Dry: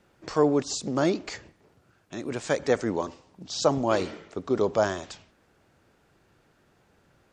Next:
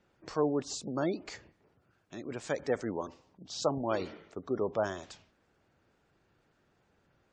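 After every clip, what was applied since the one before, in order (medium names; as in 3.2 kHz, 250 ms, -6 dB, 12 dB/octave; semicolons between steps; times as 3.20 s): spectral gate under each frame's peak -30 dB strong; trim -7.5 dB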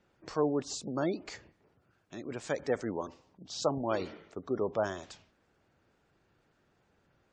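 no audible change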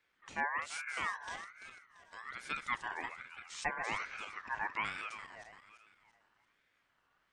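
backward echo that repeats 170 ms, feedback 61%, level -7.5 dB; ring modulator with a swept carrier 1.6 kHz, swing 20%, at 1.2 Hz; trim -4 dB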